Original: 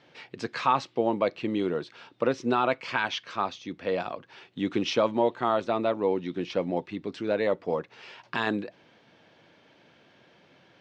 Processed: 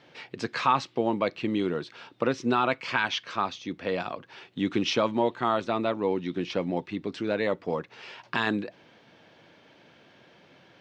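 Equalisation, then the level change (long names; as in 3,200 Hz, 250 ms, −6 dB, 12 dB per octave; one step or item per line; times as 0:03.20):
dynamic equaliser 570 Hz, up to −5 dB, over −35 dBFS, Q 1
+2.5 dB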